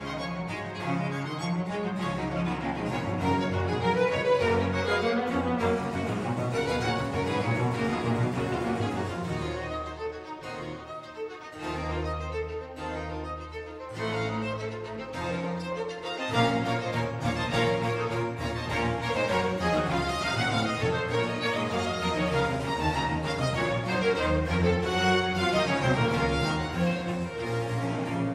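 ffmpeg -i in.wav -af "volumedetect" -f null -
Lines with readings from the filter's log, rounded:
mean_volume: -28.4 dB
max_volume: -11.6 dB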